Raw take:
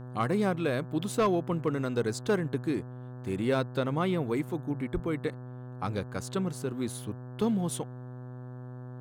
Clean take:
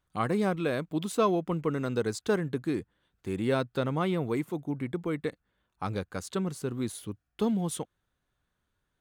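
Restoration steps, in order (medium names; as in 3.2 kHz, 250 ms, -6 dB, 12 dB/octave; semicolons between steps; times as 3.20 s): clip repair -19 dBFS; de-hum 125.2 Hz, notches 14; 4.93–5.05 s: high-pass 140 Hz 24 dB/octave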